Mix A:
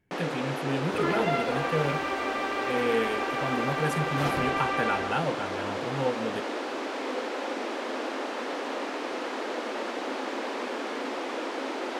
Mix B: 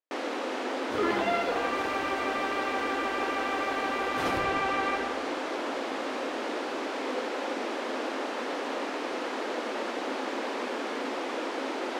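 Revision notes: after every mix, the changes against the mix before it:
speech: muted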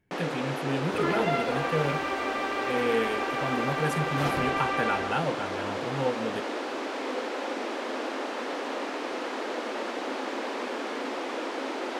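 speech: unmuted

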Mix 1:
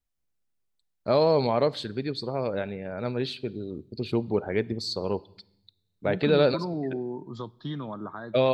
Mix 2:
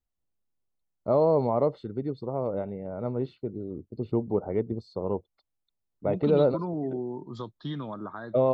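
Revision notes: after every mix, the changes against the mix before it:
first voice: add Savitzky-Golay smoothing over 65 samples
reverb: off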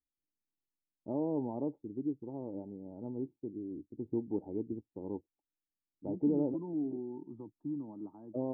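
master: add formant resonators in series u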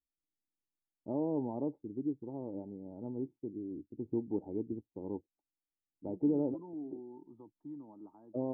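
second voice: add low-shelf EQ 420 Hz −11.5 dB

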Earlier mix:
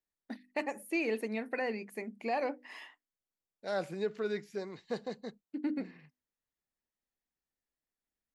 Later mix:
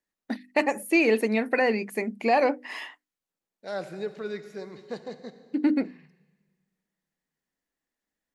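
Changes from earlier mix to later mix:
first voice +11.5 dB
reverb: on, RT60 1.6 s

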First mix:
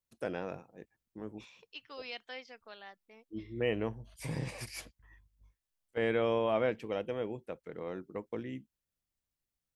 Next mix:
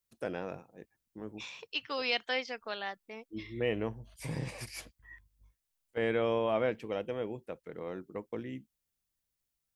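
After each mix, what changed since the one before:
second voice +12.0 dB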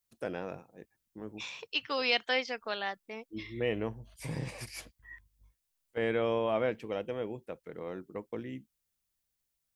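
second voice +3.0 dB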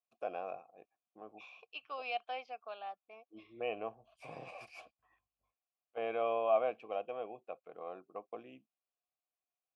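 first voice +8.0 dB
master: add formant filter a

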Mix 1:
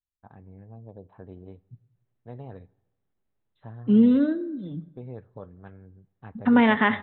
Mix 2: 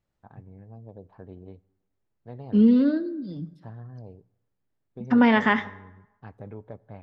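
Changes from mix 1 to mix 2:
second voice: entry −1.35 s
master: remove linear-phase brick-wall low-pass 4,100 Hz

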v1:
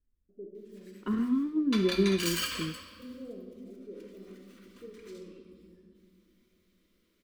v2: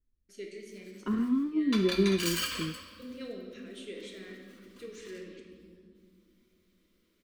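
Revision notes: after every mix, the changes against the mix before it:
first voice: remove Gaussian smoothing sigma 12 samples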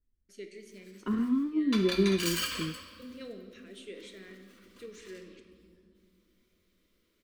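first voice: send −6.0 dB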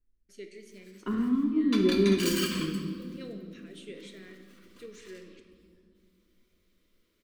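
second voice: send on

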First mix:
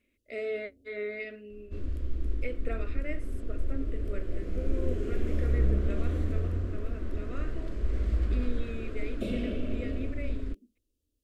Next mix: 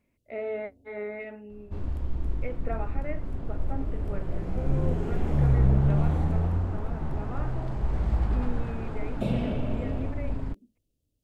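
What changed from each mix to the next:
speech: add high-frequency loss of the air 460 metres
master: remove phaser with its sweep stopped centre 350 Hz, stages 4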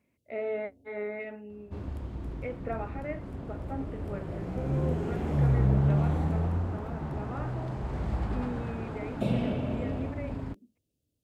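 master: add high-pass filter 82 Hz 12 dB per octave

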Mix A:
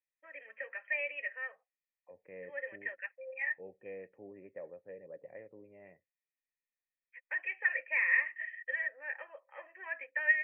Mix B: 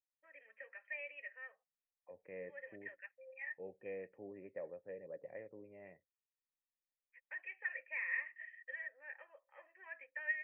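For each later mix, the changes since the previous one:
first voice −10.5 dB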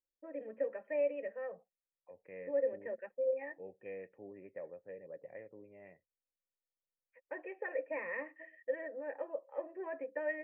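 first voice: remove high-pass with resonance 2,100 Hz, resonance Q 2

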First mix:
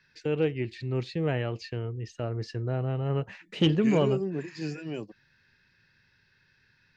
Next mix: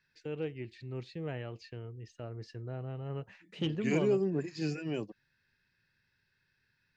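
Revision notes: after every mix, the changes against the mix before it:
first voice −10.5 dB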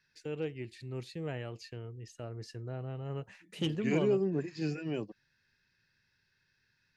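first voice: remove high-frequency loss of the air 180 metres
master: add high-shelf EQ 5,000 Hz −6.5 dB

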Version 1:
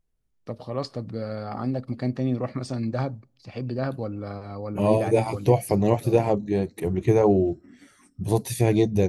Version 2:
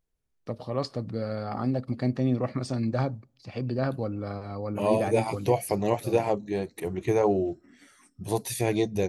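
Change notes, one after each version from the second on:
second voice: add low-shelf EQ 360 Hz −10 dB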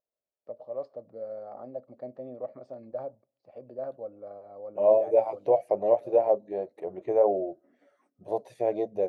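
second voice +8.5 dB
master: add resonant band-pass 590 Hz, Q 5.3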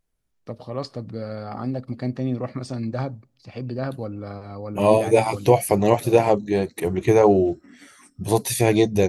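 second voice: send −7.5 dB
master: remove resonant band-pass 590 Hz, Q 5.3

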